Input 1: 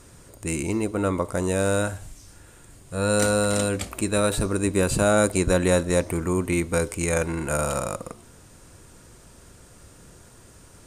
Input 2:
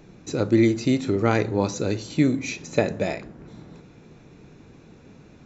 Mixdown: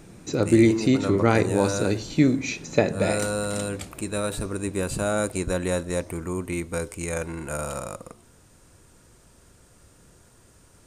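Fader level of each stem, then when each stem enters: −5.5, +1.0 decibels; 0.00, 0.00 seconds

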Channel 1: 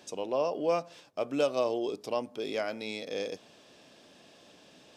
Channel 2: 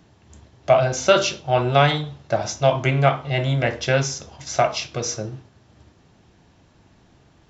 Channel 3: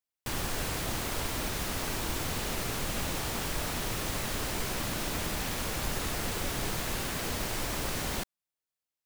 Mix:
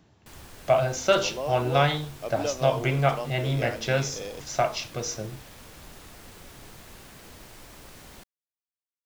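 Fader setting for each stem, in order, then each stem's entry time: −3.0, −5.5, −14.0 decibels; 1.05, 0.00, 0.00 seconds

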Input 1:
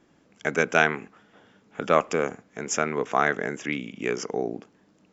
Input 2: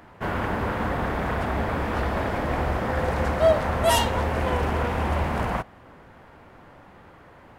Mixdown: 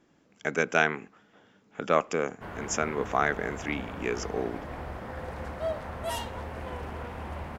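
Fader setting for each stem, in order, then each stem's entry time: −3.5, −13.0 decibels; 0.00, 2.20 seconds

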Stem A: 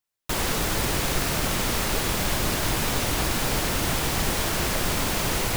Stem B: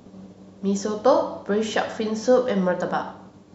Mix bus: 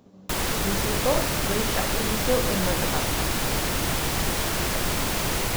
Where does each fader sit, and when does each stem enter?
−0.5, −7.0 decibels; 0.00, 0.00 seconds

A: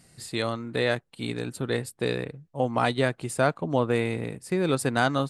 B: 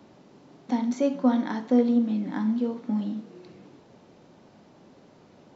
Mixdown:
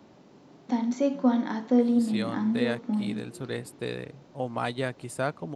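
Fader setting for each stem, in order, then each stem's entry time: −6.0, −1.0 decibels; 1.80, 0.00 seconds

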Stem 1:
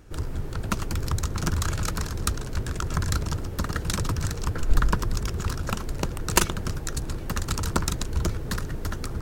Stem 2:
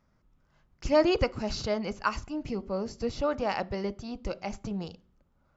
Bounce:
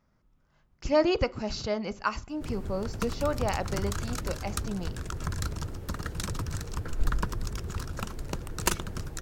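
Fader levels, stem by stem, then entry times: −6.5, −0.5 decibels; 2.30, 0.00 seconds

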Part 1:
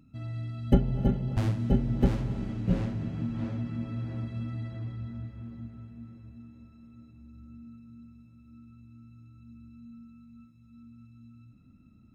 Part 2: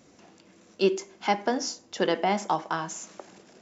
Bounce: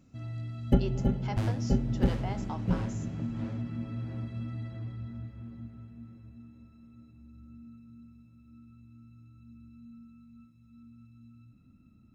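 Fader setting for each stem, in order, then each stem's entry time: −2.0, −14.5 decibels; 0.00, 0.00 seconds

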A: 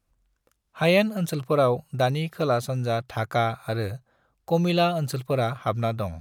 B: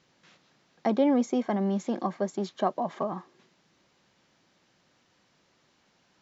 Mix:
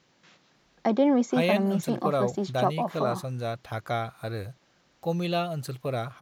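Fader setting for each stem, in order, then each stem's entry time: −6.0, +1.5 decibels; 0.55, 0.00 seconds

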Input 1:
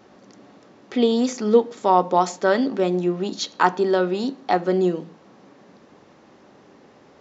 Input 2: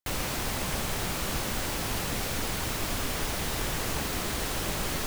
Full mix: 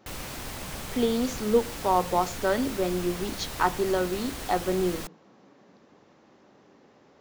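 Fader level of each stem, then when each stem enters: −6.5, −6.0 decibels; 0.00, 0.00 seconds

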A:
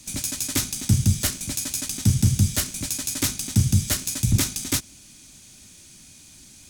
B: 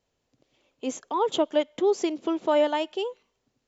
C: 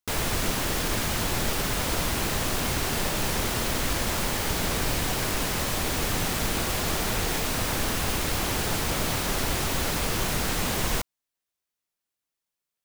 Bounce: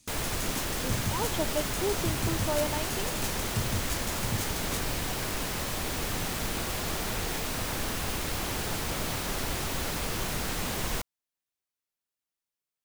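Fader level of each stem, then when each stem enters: −14.0, −8.5, −5.0 decibels; 0.00, 0.00, 0.00 seconds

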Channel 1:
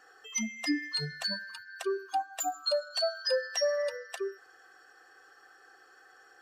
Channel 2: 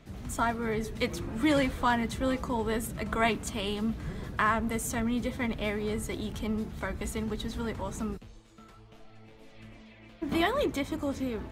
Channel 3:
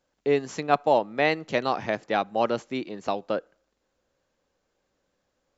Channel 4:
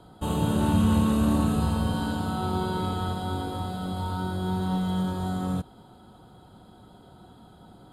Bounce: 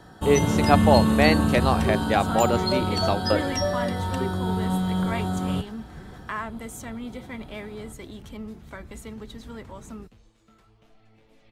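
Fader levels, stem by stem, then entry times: +1.5, −5.5, +2.5, +2.0 decibels; 0.00, 1.90, 0.00, 0.00 seconds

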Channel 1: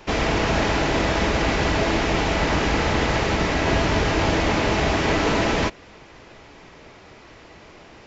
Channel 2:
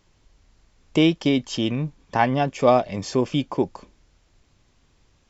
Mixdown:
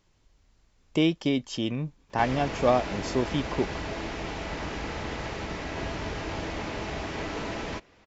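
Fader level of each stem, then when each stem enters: −13.0, −5.5 decibels; 2.10, 0.00 seconds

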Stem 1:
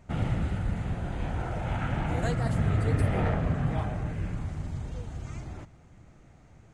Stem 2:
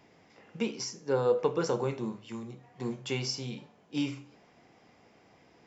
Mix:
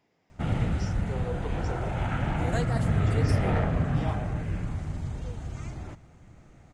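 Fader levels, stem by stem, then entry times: +1.5, −11.0 decibels; 0.30, 0.00 seconds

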